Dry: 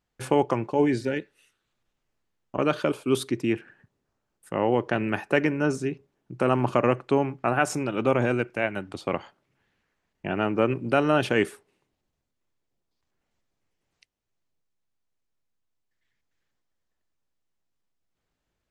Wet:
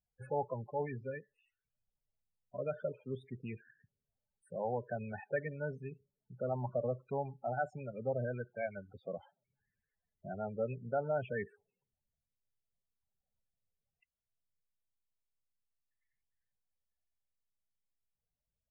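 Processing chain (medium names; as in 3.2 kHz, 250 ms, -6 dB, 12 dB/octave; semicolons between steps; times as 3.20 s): loudest bins only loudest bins 16; low-pass that closes with the level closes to 2.5 kHz, closed at -24 dBFS; static phaser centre 1.2 kHz, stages 6; trim -8.5 dB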